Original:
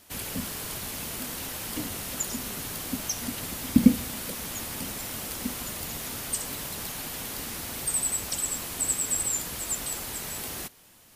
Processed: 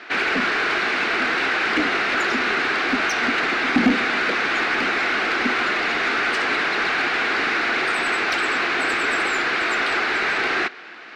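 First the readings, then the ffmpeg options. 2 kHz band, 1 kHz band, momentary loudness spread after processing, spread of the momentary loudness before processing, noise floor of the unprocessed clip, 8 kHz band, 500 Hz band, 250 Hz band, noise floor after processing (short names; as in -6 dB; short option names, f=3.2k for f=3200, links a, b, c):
+23.5 dB, +19.5 dB, 1 LU, 8 LU, -54 dBFS, -11.0 dB, +15.0 dB, +3.0 dB, -37 dBFS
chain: -filter_complex "[0:a]highpass=330,equalizer=f=360:t=q:w=4:g=5,equalizer=f=560:t=q:w=4:g=-9,equalizer=f=950:t=q:w=4:g=-8,equalizer=f=1.5k:t=q:w=4:g=6,equalizer=f=2.2k:t=q:w=4:g=3,equalizer=f=3.2k:t=q:w=4:g=-8,lowpass=f=3.7k:w=0.5412,lowpass=f=3.7k:w=1.3066,asplit=2[a][b];[b]highpass=f=720:p=1,volume=29dB,asoftclip=type=tanh:threshold=-9.5dB[c];[a][c]amix=inputs=2:normalize=0,lowpass=f=2.4k:p=1,volume=-6dB,volume=2.5dB"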